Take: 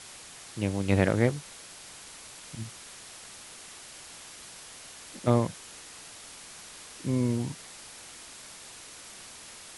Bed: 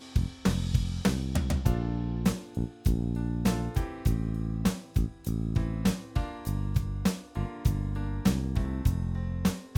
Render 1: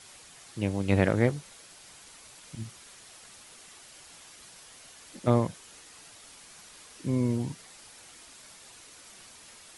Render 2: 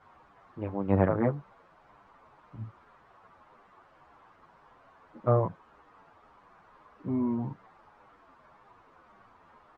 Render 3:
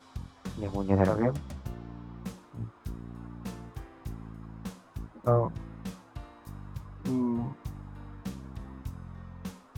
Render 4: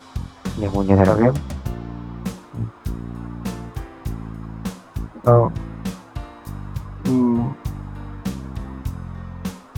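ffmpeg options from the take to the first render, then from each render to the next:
-af "afftdn=nr=6:nf=-47"
-filter_complex "[0:a]lowpass=f=1100:t=q:w=2.5,asplit=2[s0][s1];[s1]adelay=8.8,afreqshift=-1.8[s2];[s0][s2]amix=inputs=2:normalize=1"
-filter_complex "[1:a]volume=0.224[s0];[0:a][s0]amix=inputs=2:normalize=0"
-af "volume=3.76,alimiter=limit=0.891:level=0:latency=1"

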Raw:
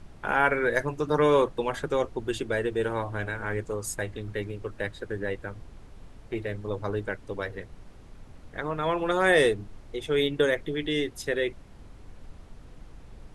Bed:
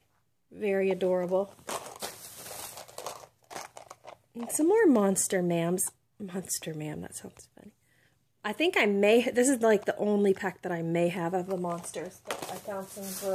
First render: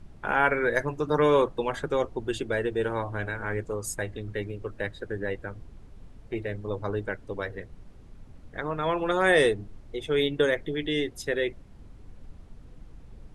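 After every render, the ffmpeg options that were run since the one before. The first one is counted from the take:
-af "afftdn=nr=6:nf=-49"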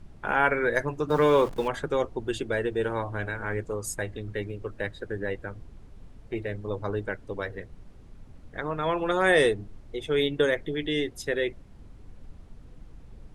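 -filter_complex "[0:a]asettb=1/sr,asplit=3[s0][s1][s2];[s0]atrim=end=1.104[s3];[s1]atrim=start=1.1:end=1.68,asetpts=PTS-STARTPTS,afade=t=in:d=0.004:c=qsin,afade=t=out:st=0.576:d=0.004:c=qsin,aeval=exprs='val(0)+0.5*0.0141*sgn(val(0))':c=same[s4];[s2]atrim=start=1.676[s5];[s3][s4]acrossfade=d=0.004:c1=hsin:c2=qsin[s6];[s6][s5]acrossfade=d=0.004:c1=qsin:c2=hsin"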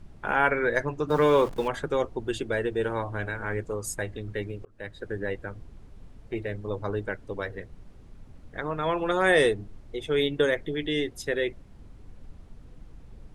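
-filter_complex "[0:a]asettb=1/sr,asplit=3[s0][s1][s2];[s0]atrim=end=0.504[s3];[s1]atrim=start=0.5:end=1.07,asetpts=PTS-STARTPTS,afade=t=in:d=0.004:c=qsin,afade=t=out:st=0.566:d=0.004:c=qsin,lowpass=7900[s4];[s2]atrim=start=1.066[s5];[s3][s4]acrossfade=d=0.004:c1=hsin:c2=qsin[s6];[s6][s5]acrossfade=d=0.004:c1=qsin:c2=hsin,asplit=2[s7][s8];[s7]atrim=end=4.65,asetpts=PTS-STARTPTS,afade=t=out:st=4.646:d=0.004:c=hsin[s9];[s8]atrim=start=4.65,asetpts=PTS-STARTPTS,afade=t=in:d=0.42[s10];[s9][s10]concat=n=2:v=0:a=1"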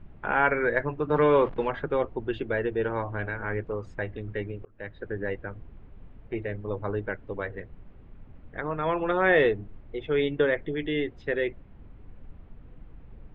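-af "lowpass=f=2900:w=0.5412,lowpass=f=2900:w=1.3066"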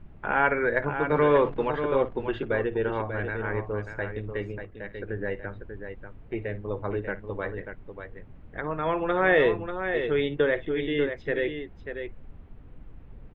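-af "aecho=1:1:55|590:0.141|0.398"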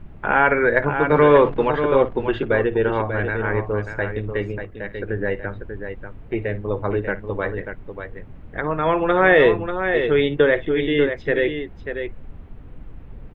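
-af "volume=2.37,alimiter=limit=0.708:level=0:latency=1"

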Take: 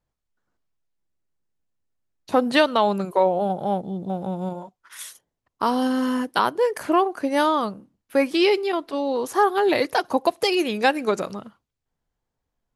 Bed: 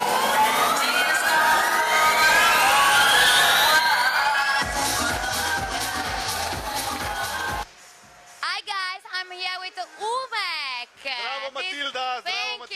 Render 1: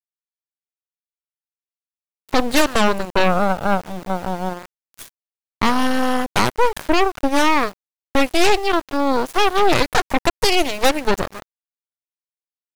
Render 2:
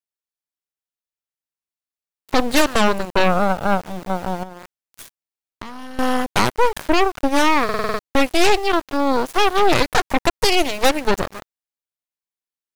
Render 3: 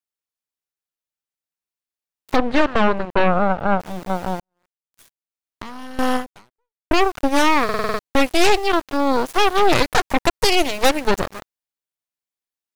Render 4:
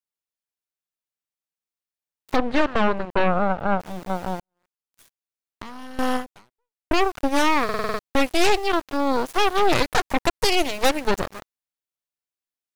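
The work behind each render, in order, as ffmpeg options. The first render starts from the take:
-af "aeval=exprs='val(0)*gte(abs(val(0)),0.0251)':c=same,aeval=exprs='0.531*(cos(1*acos(clip(val(0)/0.531,-1,1)))-cos(1*PI/2))+0.168*(cos(8*acos(clip(val(0)/0.531,-1,1)))-cos(8*PI/2))':c=same"
-filter_complex "[0:a]asettb=1/sr,asplit=3[s0][s1][s2];[s0]atrim=end=4.434[s3];[s1]atrim=start=4.43:end=5.99,asetpts=PTS-STARTPTS,afade=t=in:d=0.004:c=qsin,afade=t=out:st=1.556:d=0.004:c=qsin,acompressor=threshold=0.0316:ratio=6:attack=3.2:release=140:knee=1:detection=peak[s4];[s2]atrim=start=5.986[s5];[s3][s4]acrossfade=d=0.004:c1=hsin:c2=qsin[s6];[s6][s5]acrossfade=d=0.004:c1=qsin:c2=hsin,asplit=8[s7][s8][s9][s10][s11][s12][s13][s14];[s7]atrim=end=7.692[s15];[s8]atrim=start=7.638:end=7.692[s16];[s9]atrim=start=7.638:end=7.692[s17];[s10]atrim=start=7.638:end=7.692[s18];[s11]atrim=start=7.638:end=7.692[s19];[s12]atrim=start=7.638:end=7.692[s20];[s13]atrim=start=7.638:end=7.692[s21];[s14]atrim=start=7.988[s22];[s15][s16]acrossfade=d=0.004:c1=hsin:c2=hsin[s23];[s23][s17]acrossfade=d=0.004:c1=hsin:c2=hsin[s24];[s24][s18]acrossfade=d=0.004:c1=hsin:c2=hsin[s25];[s25][s19]acrossfade=d=0.004:c1=hsin:c2=hsin[s26];[s26][s20]acrossfade=d=0.004:c1=hsin:c2=hsin[s27];[s27][s21]acrossfade=d=0.004:c1=hsin:c2=hsin[s28];[s28][s22]acrossfade=d=0.004:c1=hsin:c2=hsin"
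-filter_complex "[0:a]asplit=3[s0][s1][s2];[s0]afade=t=out:st=2.35:d=0.02[s3];[s1]lowpass=2400,afade=t=in:st=2.35:d=0.02,afade=t=out:st=3.79:d=0.02[s4];[s2]afade=t=in:st=3.79:d=0.02[s5];[s3][s4][s5]amix=inputs=3:normalize=0,asplit=3[s6][s7][s8];[s6]atrim=end=4.4,asetpts=PTS-STARTPTS,afade=t=out:st=4.396:d=0.004:c=hsin[s9];[s7]atrim=start=4.4:end=6.91,asetpts=PTS-STARTPTS,afade=t=in:d=1.23:c=qua,afade=t=out:st=1.76:d=0.75:c=exp[s10];[s8]atrim=start=6.91,asetpts=PTS-STARTPTS,afade=t=in:d=0.004:c=hsin[s11];[s9][s10][s11]concat=n=3:v=0:a=1"
-af "volume=0.668"

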